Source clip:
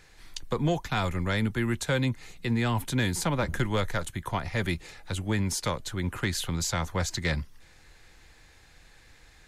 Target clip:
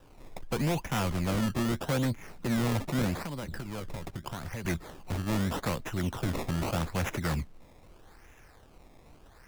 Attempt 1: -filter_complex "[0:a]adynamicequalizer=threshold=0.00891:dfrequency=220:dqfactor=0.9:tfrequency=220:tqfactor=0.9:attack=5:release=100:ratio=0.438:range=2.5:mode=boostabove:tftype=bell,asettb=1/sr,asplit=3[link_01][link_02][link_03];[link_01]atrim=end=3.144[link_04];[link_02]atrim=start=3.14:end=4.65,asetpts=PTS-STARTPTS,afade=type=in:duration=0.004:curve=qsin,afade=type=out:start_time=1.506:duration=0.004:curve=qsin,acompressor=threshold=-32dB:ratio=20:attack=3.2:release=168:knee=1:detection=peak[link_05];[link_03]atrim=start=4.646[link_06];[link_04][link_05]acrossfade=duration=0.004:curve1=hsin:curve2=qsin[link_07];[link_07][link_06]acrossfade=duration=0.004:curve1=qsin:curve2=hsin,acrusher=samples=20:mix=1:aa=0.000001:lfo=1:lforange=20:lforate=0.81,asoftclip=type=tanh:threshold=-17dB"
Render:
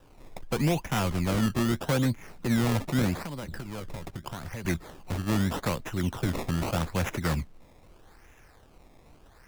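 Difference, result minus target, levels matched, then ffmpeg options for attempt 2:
soft clipping: distortion −8 dB
-filter_complex "[0:a]adynamicequalizer=threshold=0.00891:dfrequency=220:dqfactor=0.9:tfrequency=220:tqfactor=0.9:attack=5:release=100:ratio=0.438:range=2.5:mode=boostabove:tftype=bell,asettb=1/sr,asplit=3[link_01][link_02][link_03];[link_01]atrim=end=3.144[link_04];[link_02]atrim=start=3.14:end=4.65,asetpts=PTS-STARTPTS,afade=type=in:duration=0.004:curve=qsin,afade=type=out:start_time=1.506:duration=0.004:curve=qsin,acompressor=threshold=-32dB:ratio=20:attack=3.2:release=168:knee=1:detection=peak[link_05];[link_03]atrim=start=4.646[link_06];[link_04][link_05]acrossfade=duration=0.004:curve1=hsin:curve2=qsin[link_07];[link_07][link_06]acrossfade=duration=0.004:curve1=qsin:curve2=hsin,acrusher=samples=20:mix=1:aa=0.000001:lfo=1:lforange=20:lforate=0.81,asoftclip=type=tanh:threshold=-24dB"

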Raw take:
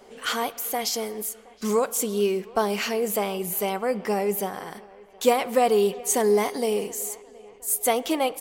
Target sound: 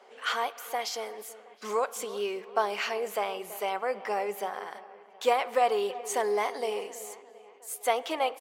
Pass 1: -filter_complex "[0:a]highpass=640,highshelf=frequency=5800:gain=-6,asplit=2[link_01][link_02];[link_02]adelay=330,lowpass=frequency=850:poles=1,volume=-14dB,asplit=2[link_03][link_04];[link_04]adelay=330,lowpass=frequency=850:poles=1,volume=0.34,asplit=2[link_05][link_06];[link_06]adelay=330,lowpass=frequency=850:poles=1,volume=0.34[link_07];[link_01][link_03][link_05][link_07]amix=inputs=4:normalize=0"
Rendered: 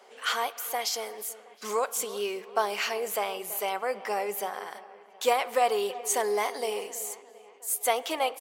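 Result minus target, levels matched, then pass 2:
8,000 Hz band +6.5 dB
-filter_complex "[0:a]highpass=640,highshelf=frequency=5800:gain=-17.5,asplit=2[link_01][link_02];[link_02]adelay=330,lowpass=frequency=850:poles=1,volume=-14dB,asplit=2[link_03][link_04];[link_04]adelay=330,lowpass=frequency=850:poles=1,volume=0.34,asplit=2[link_05][link_06];[link_06]adelay=330,lowpass=frequency=850:poles=1,volume=0.34[link_07];[link_01][link_03][link_05][link_07]amix=inputs=4:normalize=0"

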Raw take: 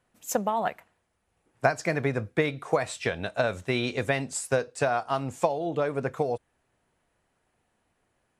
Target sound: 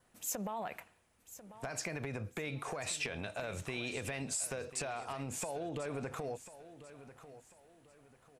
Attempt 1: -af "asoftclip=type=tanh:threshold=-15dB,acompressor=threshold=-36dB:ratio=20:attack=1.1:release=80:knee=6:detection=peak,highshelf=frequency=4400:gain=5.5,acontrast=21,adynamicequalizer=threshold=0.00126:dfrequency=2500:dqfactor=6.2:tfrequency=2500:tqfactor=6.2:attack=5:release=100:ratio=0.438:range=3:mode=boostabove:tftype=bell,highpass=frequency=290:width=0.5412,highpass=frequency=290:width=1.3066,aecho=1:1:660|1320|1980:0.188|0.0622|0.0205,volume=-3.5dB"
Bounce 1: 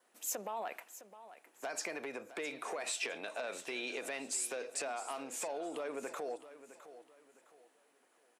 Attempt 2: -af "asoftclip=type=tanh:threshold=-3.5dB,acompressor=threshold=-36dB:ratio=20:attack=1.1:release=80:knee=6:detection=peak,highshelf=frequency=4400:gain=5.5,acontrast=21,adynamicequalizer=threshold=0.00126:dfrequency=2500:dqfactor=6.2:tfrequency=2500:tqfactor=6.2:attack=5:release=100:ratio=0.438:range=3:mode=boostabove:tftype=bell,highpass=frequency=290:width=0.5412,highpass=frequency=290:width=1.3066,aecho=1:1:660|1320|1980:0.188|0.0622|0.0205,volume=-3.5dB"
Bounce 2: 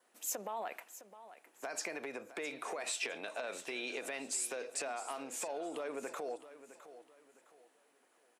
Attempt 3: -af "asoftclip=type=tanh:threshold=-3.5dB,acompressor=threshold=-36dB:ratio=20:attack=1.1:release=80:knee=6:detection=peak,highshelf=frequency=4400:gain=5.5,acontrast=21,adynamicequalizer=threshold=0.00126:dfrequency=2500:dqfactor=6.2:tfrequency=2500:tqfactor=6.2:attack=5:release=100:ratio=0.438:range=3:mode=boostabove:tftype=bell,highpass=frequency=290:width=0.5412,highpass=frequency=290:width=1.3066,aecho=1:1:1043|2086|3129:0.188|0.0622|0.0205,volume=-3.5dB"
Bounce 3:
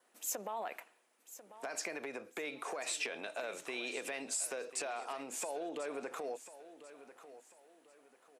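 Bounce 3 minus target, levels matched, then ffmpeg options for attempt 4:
250 Hz band −4.0 dB
-af "asoftclip=type=tanh:threshold=-3.5dB,acompressor=threshold=-36dB:ratio=20:attack=1.1:release=80:knee=6:detection=peak,highshelf=frequency=4400:gain=5.5,acontrast=21,adynamicequalizer=threshold=0.00126:dfrequency=2500:dqfactor=6.2:tfrequency=2500:tqfactor=6.2:attack=5:release=100:ratio=0.438:range=3:mode=boostabove:tftype=bell,aecho=1:1:1043|2086|3129:0.188|0.0622|0.0205,volume=-3.5dB"

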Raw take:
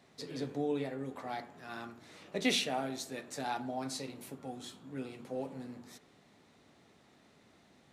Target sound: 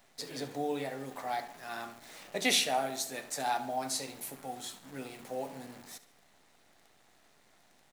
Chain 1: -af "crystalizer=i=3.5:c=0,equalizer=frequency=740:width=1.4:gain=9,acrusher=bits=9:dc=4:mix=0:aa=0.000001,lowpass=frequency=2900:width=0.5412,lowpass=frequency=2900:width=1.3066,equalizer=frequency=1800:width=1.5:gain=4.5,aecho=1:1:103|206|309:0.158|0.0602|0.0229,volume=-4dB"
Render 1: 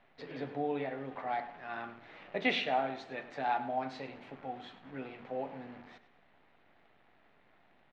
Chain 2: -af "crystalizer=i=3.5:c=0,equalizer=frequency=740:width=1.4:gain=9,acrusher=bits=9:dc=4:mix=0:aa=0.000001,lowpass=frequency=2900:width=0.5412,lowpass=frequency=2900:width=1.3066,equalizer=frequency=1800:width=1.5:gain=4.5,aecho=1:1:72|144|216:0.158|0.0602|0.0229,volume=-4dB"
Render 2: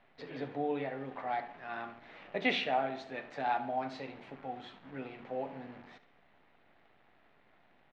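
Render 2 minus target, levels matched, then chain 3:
4,000 Hz band −5.5 dB
-af "crystalizer=i=3.5:c=0,equalizer=frequency=740:width=1.4:gain=9,acrusher=bits=9:dc=4:mix=0:aa=0.000001,equalizer=frequency=1800:width=1.5:gain=4.5,aecho=1:1:72|144|216:0.158|0.0602|0.0229,volume=-4dB"

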